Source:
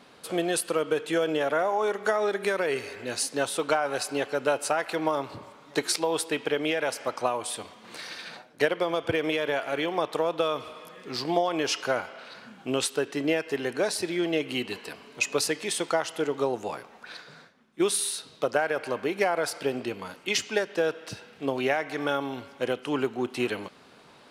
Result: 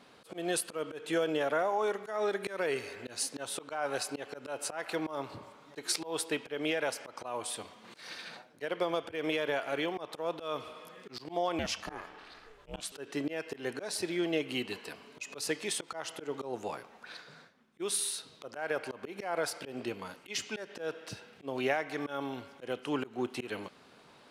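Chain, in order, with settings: 11.59–12.92 ring modulator 220 Hz; auto swell 0.153 s; gain -4.5 dB

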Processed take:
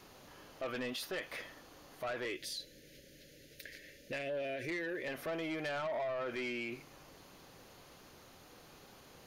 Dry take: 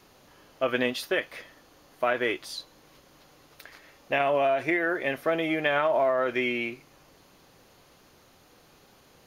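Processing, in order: 2.25–5.08 Chebyshev band-stop 570–1700 Hz, order 3; soft clip -24.5 dBFS, distortion -11 dB; compressor, threshold -32 dBFS, peak gain reduction 5.5 dB; limiter -33.5 dBFS, peak gain reduction 8 dB

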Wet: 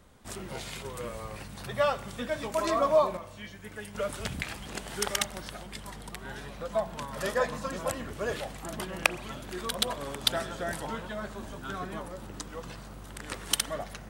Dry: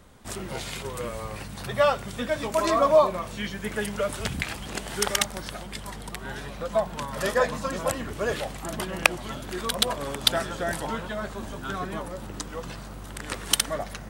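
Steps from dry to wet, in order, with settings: 3.17–3.95 resonator 100 Hz, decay 0.17 s, harmonics odd, mix 70%; spring tank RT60 1 s, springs 33 ms, DRR 17 dB; gain -5 dB

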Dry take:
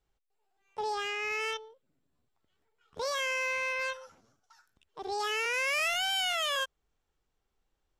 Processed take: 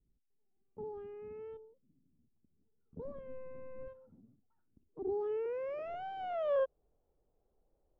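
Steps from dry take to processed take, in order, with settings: 3.05–3.88 overdrive pedal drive 20 dB, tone 1300 Hz, clips at -25 dBFS; low-pass sweep 230 Hz -> 580 Hz, 4.38–6.78; gain +2.5 dB

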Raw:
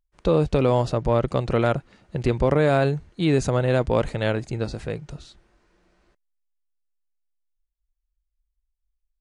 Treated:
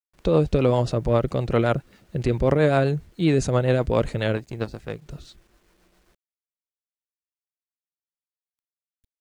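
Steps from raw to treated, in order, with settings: 4.37–5.06 power-law curve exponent 1.4; rotary speaker horn 7.5 Hz, later 1.2 Hz, at 6.28; bit-crush 11-bit; gain +2 dB

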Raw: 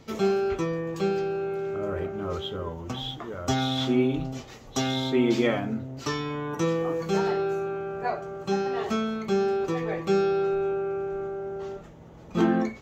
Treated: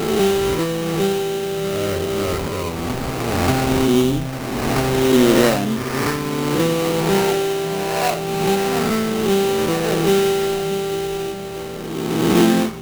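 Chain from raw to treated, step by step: spectral swells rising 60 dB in 1.84 s; delay with a stepping band-pass 0.626 s, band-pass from 160 Hz, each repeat 0.7 oct, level -9.5 dB; sample-rate reducer 3400 Hz, jitter 20%; gain +6 dB

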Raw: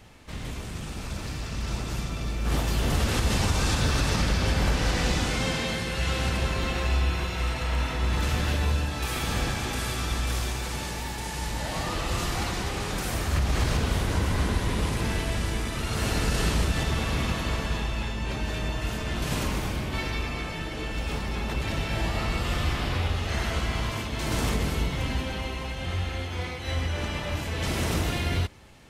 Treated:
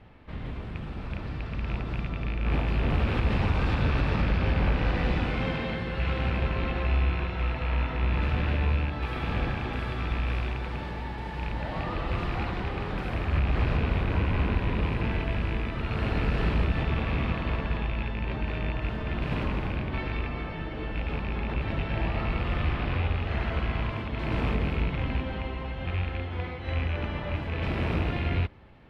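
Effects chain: rattling part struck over -27 dBFS, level -20 dBFS; air absorption 420 m

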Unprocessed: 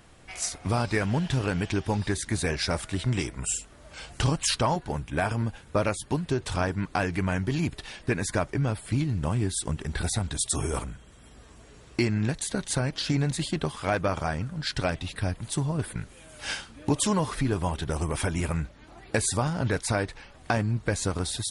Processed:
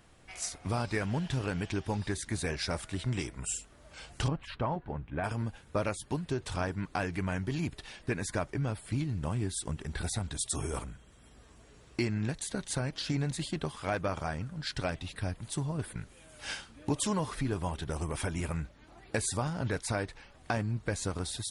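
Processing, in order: 4.28–5.24 air absorption 480 m; gain -6 dB

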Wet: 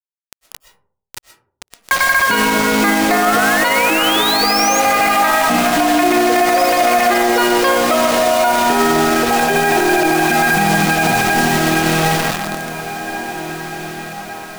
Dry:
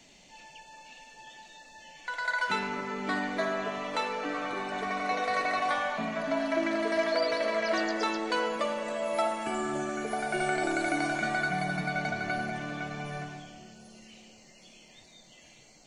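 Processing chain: air absorption 170 m; in parallel at -0.5 dB: compressor, threshold -43 dBFS, peak gain reduction 18 dB; on the sum: speed mistake 44.1 kHz file played as 48 kHz; painted sound rise, 3.22–4.8, 1200–6800 Hz -35 dBFS; bit-crush 6-bit; on a send: diffused feedback echo 1.834 s, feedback 51%, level -15 dB; on the sum: digital reverb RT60 0.56 s, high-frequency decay 0.35×, pre-delay 85 ms, DRR 11 dB; maximiser +23 dB; gain -4 dB

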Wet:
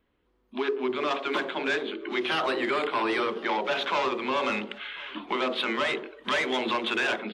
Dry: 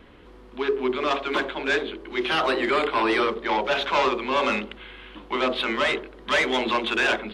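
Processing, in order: spectral noise reduction 29 dB; compressor 2.5:1, threshold -36 dBFS, peak gain reduction 12 dB; on a send: feedback echo 1.046 s, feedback 27%, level -23 dB; on the sum: gain +6 dB

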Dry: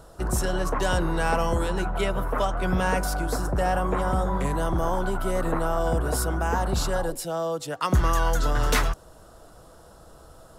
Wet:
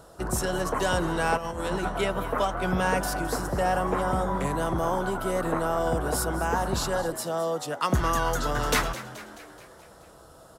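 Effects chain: HPF 110 Hz 6 dB/oct; frequency-shifting echo 0.214 s, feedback 58%, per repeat +86 Hz, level -15 dB; 1.37–1.89 negative-ratio compressor -29 dBFS, ratio -0.5

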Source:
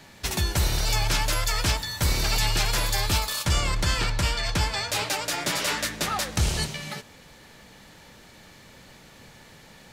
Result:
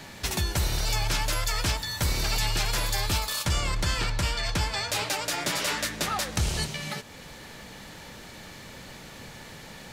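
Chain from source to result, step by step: compressor 1.5:1, threshold -45 dBFS, peak gain reduction 9.5 dB; gain +6 dB

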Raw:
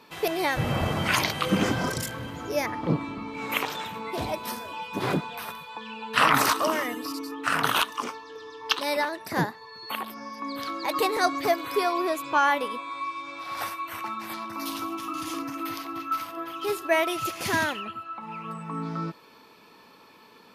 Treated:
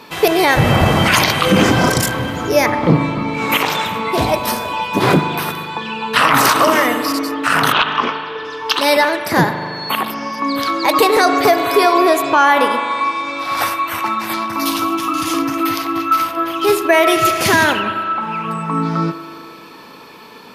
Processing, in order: 7.72–8.45 LPF 4000 Hz 24 dB/oct; spring tank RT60 2.3 s, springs 39 ms, chirp 65 ms, DRR 9.5 dB; maximiser +15 dB; gain -1 dB

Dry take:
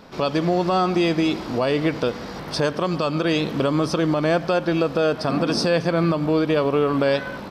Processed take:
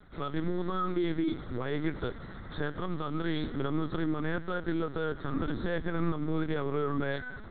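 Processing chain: fixed phaser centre 2700 Hz, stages 6; LPC vocoder at 8 kHz pitch kept; gain -7 dB

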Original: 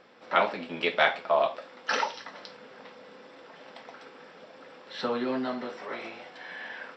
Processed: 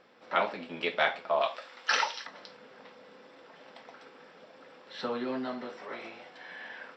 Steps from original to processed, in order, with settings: 1.41–2.27 tilt shelf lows -8 dB, about 670 Hz; gain -4 dB

